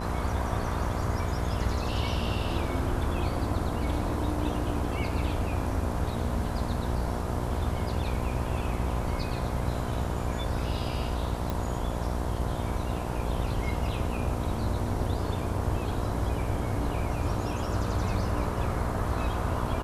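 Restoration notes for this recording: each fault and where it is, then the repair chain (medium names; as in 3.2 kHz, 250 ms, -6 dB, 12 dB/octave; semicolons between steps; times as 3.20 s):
buzz 60 Hz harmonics 17 -34 dBFS
11.50 s: pop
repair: de-click; de-hum 60 Hz, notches 17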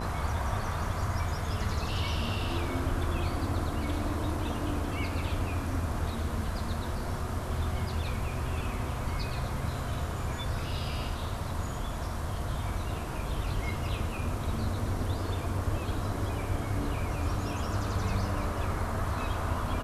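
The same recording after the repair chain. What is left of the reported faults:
nothing left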